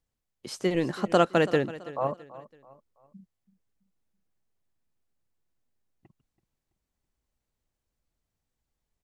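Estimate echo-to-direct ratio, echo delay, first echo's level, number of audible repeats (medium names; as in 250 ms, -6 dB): -16.5 dB, 331 ms, -17.0 dB, 3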